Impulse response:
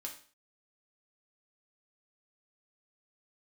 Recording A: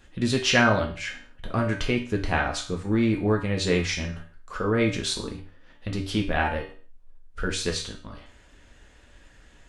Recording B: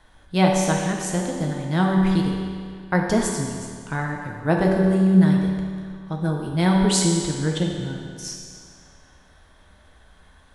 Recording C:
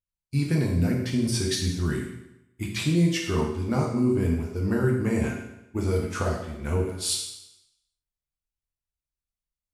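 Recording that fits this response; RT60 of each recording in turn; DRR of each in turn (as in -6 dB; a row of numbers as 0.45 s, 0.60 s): A; 0.45 s, 2.1 s, 0.85 s; 0.0 dB, -0.5 dB, -1.5 dB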